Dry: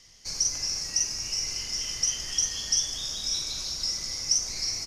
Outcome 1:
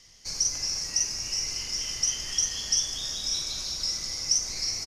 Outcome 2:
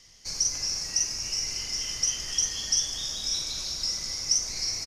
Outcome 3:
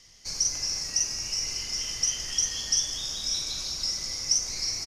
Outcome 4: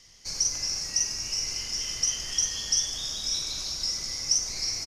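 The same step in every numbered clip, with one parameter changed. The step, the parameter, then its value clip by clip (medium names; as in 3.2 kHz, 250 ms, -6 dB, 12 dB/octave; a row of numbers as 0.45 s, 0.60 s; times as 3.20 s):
speakerphone echo, time: 380 ms, 260 ms, 170 ms, 100 ms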